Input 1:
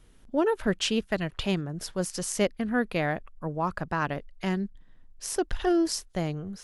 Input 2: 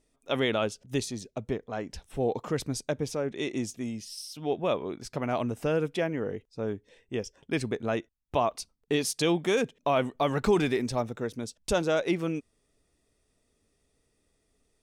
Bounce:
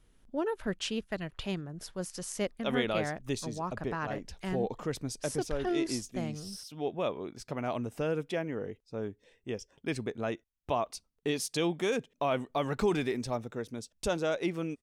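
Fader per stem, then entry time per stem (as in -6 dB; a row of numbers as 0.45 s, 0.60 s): -7.5 dB, -4.5 dB; 0.00 s, 2.35 s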